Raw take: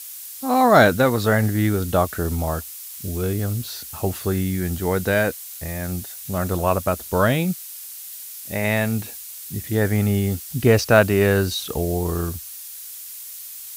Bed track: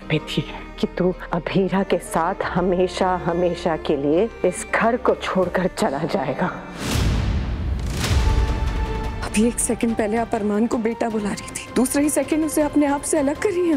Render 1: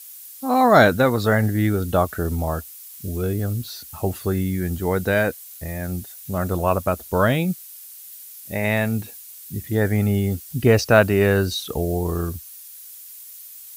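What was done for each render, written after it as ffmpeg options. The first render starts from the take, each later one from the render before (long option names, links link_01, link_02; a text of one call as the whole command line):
ffmpeg -i in.wav -af "afftdn=noise_reduction=7:noise_floor=-37" out.wav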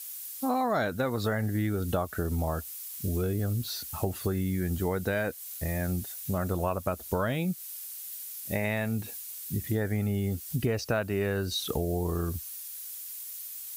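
ffmpeg -i in.wav -af "acompressor=threshold=-26dB:ratio=6" out.wav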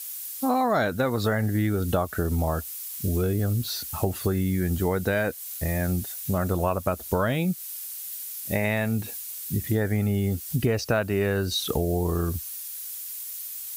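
ffmpeg -i in.wav -af "volume=4.5dB" out.wav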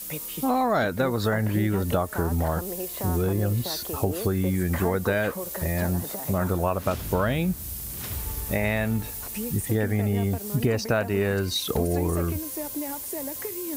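ffmpeg -i in.wav -i bed.wav -filter_complex "[1:a]volume=-15.5dB[link_01];[0:a][link_01]amix=inputs=2:normalize=0" out.wav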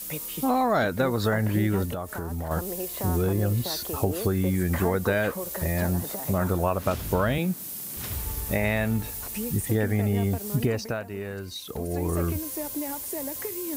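ffmpeg -i in.wav -filter_complex "[0:a]asettb=1/sr,asplit=3[link_01][link_02][link_03];[link_01]atrim=end=1.854[link_04];[link_02]atrim=start=1.85:end=2.51,asetpts=PTS-STARTPTS,afade=type=in:duration=0.004:curve=qsin,afade=type=out:start_time=0.656:duration=0.004:curve=qsin,acompressor=threshold=-30dB:ratio=3:attack=3.2:release=140:knee=1:detection=peak[link_05];[link_03]atrim=start=2.506[link_06];[link_04][link_05]acrossfade=duration=0.004:curve1=hsin:curve2=qsin[link_07];[link_07][link_06]acrossfade=duration=0.004:curve1=qsin:curve2=hsin,asettb=1/sr,asplit=3[link_08][link_09][link_10];[link_08]atrim=end=7.384[link_11];[link_09]atrim=start=7.38:end=7.97,asetpts=PTS-STARTPTS,afade=type=in:duration=0.004:curve=qsin,afade=type=out:start_time=0.586:duration=0.004:curve=qsin,highpass=frequency=160:width=0.5412,highpass=frequency=160:width=1.3066[link_12];[link_10]atrim=start=7.966[link_13];[link_11][link_12]acrossfade=duration=0.004:curve1=hsin:curve2=qsin[link_14];[link_14][link_13]acrossfade=duration=0.004:curve1=qsin:curve2=hsin,asplit=3[link_15][link_16][link_17];[link_15]atrim=end=11.04,asetpts=PTS-STARTPTS,afade=type=out:start_time=10.55:duration=0.49:silence=0.316228[link_18];[link_16]atrim=start=11.04:end=11.73,asetpts=PTS-STARTPTS,volume=-10dB[link_19];[link_17]atrim=start=11.73,asetpts=PTS-STARTPTS,afade=type=in:duration=0.49:silence=0.316228[link_20];[link_18][link_19][link_20]concat=n=3:v=0:a=1" out.wav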